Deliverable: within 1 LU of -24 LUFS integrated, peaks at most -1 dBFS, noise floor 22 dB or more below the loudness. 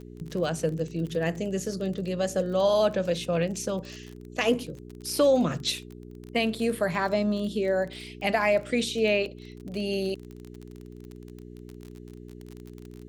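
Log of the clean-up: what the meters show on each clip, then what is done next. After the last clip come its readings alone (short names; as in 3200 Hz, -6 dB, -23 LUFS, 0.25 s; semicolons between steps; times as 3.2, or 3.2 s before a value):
ticks 32/s; hum 60 Hz; harmonics up to 420 Hz; hum level -43 dBFS; loudness -27.5 LUFS; peak -12.5 dBFS; loudness target -24.0 LUFS
-> de-click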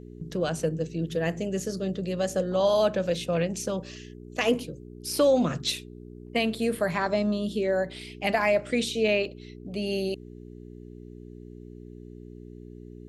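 ticks 0.076/s; hum 60 Hz; harmonics up to 420 Hz; hum level -43 dBFS
-> de-hum 60 Hz, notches 7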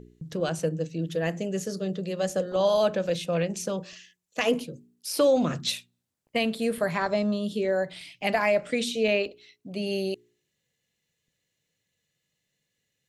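hum none; loudness -27.5 LUFS; peak -12.5 dBFS; loudness target -24.0 LUFS
-> gain +3.5 dB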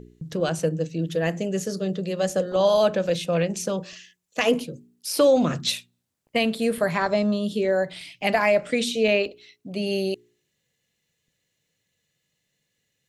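loudness -24.0 LUFS; peak -9.0 dBFS; noise floor -76 dBFS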